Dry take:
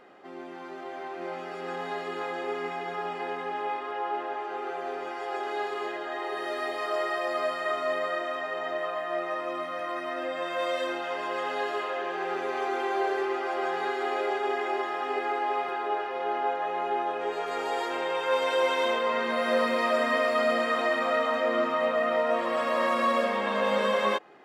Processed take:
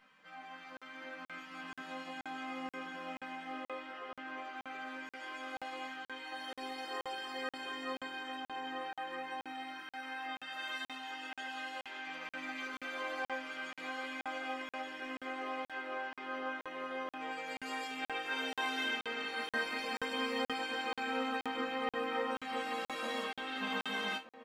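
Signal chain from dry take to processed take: spectral gate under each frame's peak -10 dB weak; 9.52–12.07 low shelf 460 Hz -8.5 dB; comb 3.9 ms, depth 63%; dynamic EQ 970 Hz, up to -4 dB, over -42 dBFS, Q 0.93; resonator bank C3 minor, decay 0.22 s; outdoor echo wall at 210 m, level -14 dB; crackling interface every 0.48 s, samples 2048, zero, from 0.77; gain +6.5 dB

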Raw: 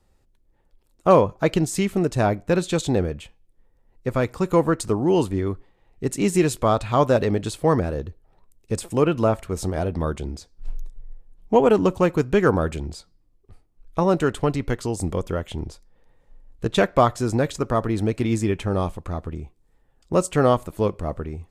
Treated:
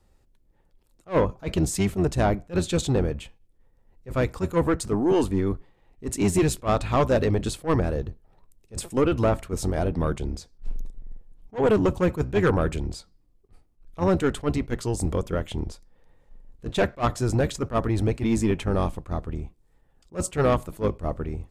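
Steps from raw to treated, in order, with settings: octaver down 1 oct, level -4 dB; soft clip -13.5 dBFS, distortion -13 dB; attack slew limiter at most 330 dB/s

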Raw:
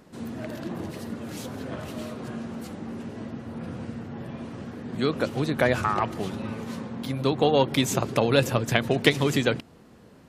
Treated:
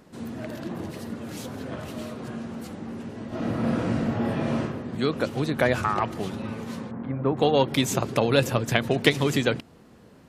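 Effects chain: 3.28–4.6 reverb throw, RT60 1 s, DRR -11.5 dB; 6.91–7.37 LPF 1800 Hz 24 dB/oct

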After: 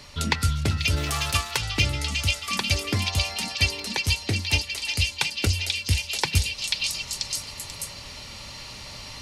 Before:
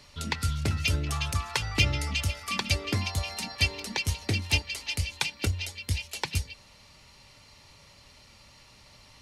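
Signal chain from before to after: 0.96–1.56 spectral whitening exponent 0.6; delay with a stepping band-pass 0.488 s, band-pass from 3700 Hz, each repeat 0.7 oct, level -1 dB; vocal rider within 10 dB 0.5 s; gain +3.5 dB

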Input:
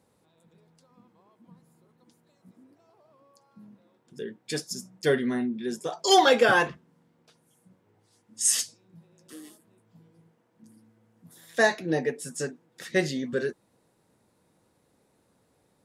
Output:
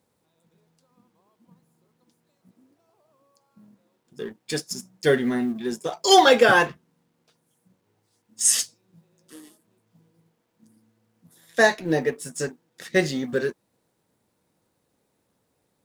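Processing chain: G.711 law mismatch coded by A; gain +4.5 dB

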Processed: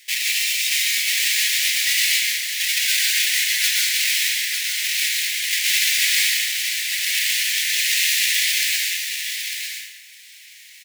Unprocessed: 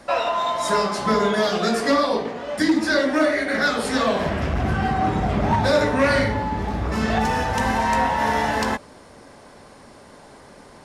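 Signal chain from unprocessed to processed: half-waves squared off; steep high-pass 1900 Hz 72 dB/oct; on a send: echo 0.901 s -7 dB; on the sum: plate-style reverb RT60 1 s, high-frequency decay 0.75×, pre-delay 0.105 s, DRR -2 dB; gain +1.5 dB

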